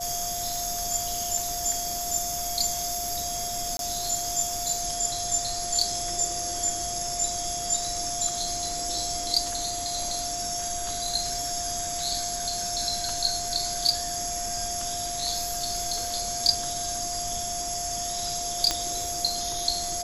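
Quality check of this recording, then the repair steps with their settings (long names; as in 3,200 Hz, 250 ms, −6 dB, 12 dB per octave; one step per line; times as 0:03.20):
whistle 700 Hz −33 dBFS
0:00.56: click
0:03.77–0:03.79: drop-out 22 ms
0:18.71: click −9 dBFS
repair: click removal
notch filter 700 Hz, Q 30
repair the gap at 0:03.77, 22 ms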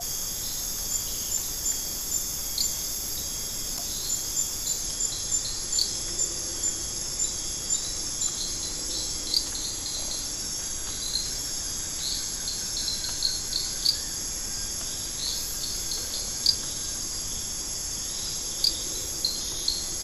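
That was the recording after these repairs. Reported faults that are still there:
none of them is left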